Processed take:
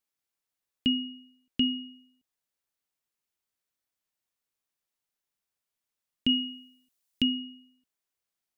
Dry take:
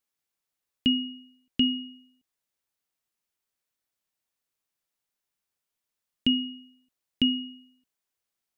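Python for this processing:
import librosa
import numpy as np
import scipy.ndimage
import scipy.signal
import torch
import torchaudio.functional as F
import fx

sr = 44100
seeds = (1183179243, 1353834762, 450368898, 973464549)

y = fx.high_shelf(x, sr, hz=3500.0, db=10.0, at=(6.29, 7.22))
y = F.gain(torch.from_numpy(y), -2.5).numpy()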